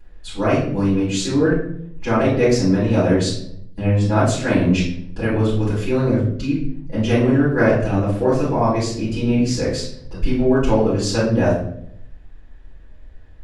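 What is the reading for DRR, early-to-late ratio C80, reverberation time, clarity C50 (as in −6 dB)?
−13.0 dB, 7.5 dB, 0.70 s, 2.5 dB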